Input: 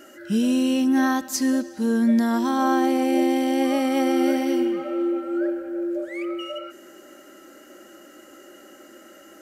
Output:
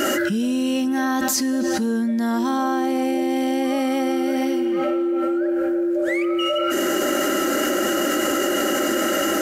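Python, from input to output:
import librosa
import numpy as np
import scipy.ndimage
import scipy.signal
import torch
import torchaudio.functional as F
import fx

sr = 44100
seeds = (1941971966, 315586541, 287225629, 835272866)

y = fx.peak_eq(x, sr, hz=280.0, db=fx.line((0.55, -0.5), (1.03, -9.0)), octaves=0.23, at=(0.55, 1.03), fade=0.02)
y = fx.env_flatten(y, sr, amount_pct=100)
y = F.gain(torch.from_numpy(y), -4.5).numpy()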